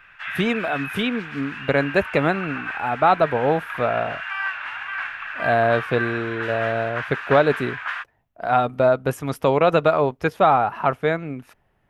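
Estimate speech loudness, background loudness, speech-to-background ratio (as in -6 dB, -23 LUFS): -21.5 LUFS, -29.5 LUFS, 8.0 dB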